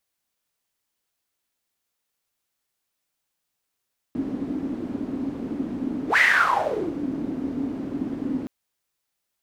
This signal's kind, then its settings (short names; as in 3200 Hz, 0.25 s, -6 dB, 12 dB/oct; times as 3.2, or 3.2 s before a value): whoosh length 4.32 s, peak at 2.03, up 0.11 s, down 0.85 s, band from 270 Hz, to 2000 Hz, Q 9, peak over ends 10.5 dB